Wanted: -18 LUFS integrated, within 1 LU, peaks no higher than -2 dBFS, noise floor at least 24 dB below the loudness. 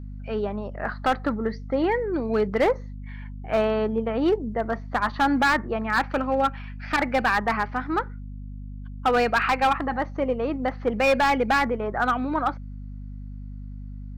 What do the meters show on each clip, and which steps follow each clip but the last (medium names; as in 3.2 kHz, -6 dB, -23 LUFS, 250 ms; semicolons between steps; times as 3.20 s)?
clipped samples 1.4%; clipping level -15.0 dBFS; hum 50 Hz; highest harmonic 250 Hz; hum level -34 dBFS; loudness -24.5 LUFS; peak level -15.0 dBFS; loudness target -18.0 LUFS
-> clip repair -15 dBFS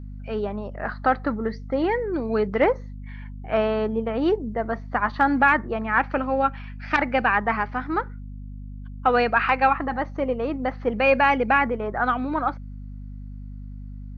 clipped samples 0.0%; hum 50 Hz; highest harmonic 250 Hz; hum level -34 dBFS
-> de-hum 50 Hz, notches 5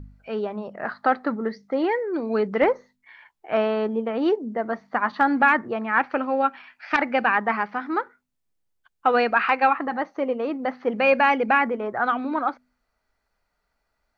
hum not found; loudness -23.5 LUFS; peak level -6.0 dBFS; loudness target -18.0 LUFS
-> trim +5.5 dB; peak limiter -2 dBFS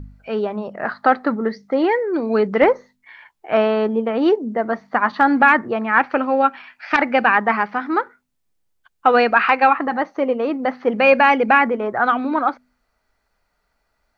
loudness -18.0 LUFS; peak level -2.0 dBFS; noise floor -71 dBFS